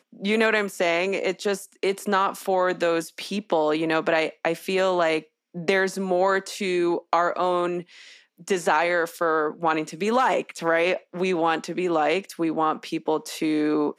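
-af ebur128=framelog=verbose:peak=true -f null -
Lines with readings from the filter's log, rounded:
Integrated loudness:
  I:         -23.9 LUFS
  Threshold: -34.1 LUFS
Loudness range:
  LRA:         1.1 LU
  Threshold: -44.1 LUFS
  LRA low:   -24.6 LUFS
  LRA high:  -23.5 LUFS
True peak:
  Peak:       -6.0 dBFS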